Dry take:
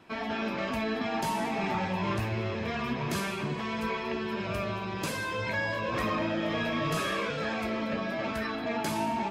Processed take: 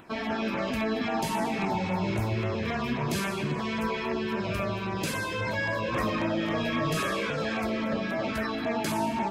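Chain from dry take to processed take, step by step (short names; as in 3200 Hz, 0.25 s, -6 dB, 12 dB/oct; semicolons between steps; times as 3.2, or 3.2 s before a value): spectral repair 1.68–2.35, 1000–3600 Hz after; in parallel at -3 dB: limiter -27.5 dBFS, peak gain reduction 7.5 dB; on the sum: LFO notch saw down 3.7 Hz 520–5700 Hz; upward compressor, threshold -51 dBFS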